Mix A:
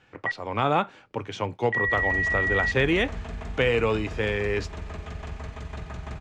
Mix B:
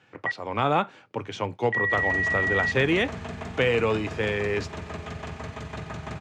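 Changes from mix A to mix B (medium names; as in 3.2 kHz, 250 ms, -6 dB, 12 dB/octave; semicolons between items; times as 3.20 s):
second sound +4.0 dB; master: add high-pass 91 Hz 24 dB/octave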